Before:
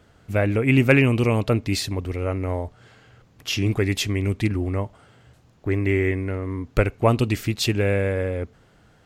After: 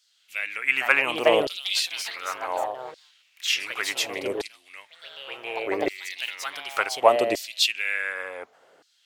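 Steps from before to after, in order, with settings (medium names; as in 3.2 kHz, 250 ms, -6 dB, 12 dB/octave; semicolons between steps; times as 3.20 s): ever faster or slower copies 511 ms, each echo +3 st, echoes 3, each echo -6 dB; LFO high-pass saw down 0.68 Hz 440–4800 Hz; trim -1 dB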